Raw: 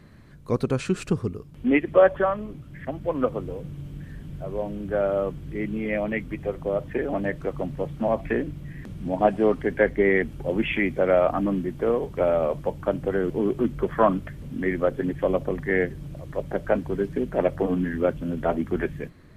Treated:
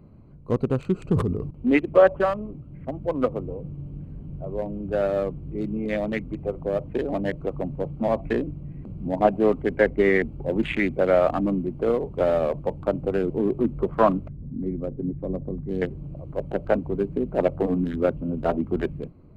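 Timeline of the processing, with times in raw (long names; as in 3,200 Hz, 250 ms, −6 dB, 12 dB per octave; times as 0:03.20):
0:00.98–0:01.51: level that may fall only so fast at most 47 dB per second
0:14.28–0:15.82: drawn EQ curve 220 Hz 0 dB, 610 Hz −11 dB, 2,000 Hz −15 dB, 4,000 Hz −21 dB
whole clip: adaptive Wiener filter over 25 samples; parametric band 5,700 Hz −7.5 dB 0.2 octaves; level +1 dB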